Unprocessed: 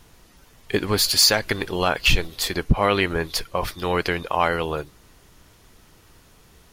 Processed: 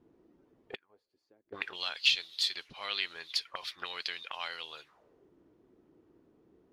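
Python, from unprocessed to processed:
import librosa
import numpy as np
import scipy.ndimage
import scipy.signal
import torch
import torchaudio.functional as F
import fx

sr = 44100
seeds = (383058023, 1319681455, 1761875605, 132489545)

y = fx.gate_flip(x, sr, shuts_db=-15.0, range_db=-34, at=(0.74, 1.52), fade=0.02)
y = fx.auto_wah(y, sr, base_hz=290.0, top_hz=3900.0, q=3.1, full_db=-22.0, direction='up')
y = fx.doppler_dist(y, sr, depth_ms=0.13)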